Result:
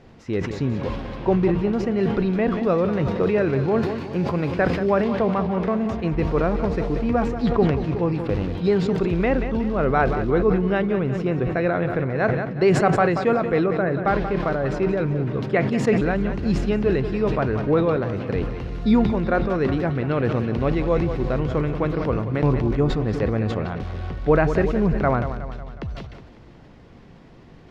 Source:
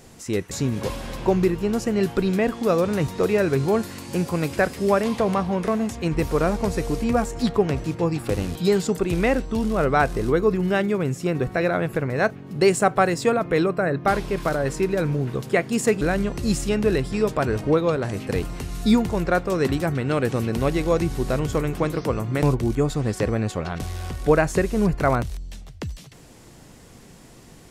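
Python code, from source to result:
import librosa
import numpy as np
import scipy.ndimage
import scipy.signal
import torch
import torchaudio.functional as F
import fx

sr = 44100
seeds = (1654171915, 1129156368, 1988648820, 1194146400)

y = fx.air_absorb(x, sr, metres=270.0)
y = fx.echo_feedback(y, sr, ms=183, feedback_pct=55, wet_db=-11.5)
y = fx.sustainer(y, sr, db_per_s=45.0)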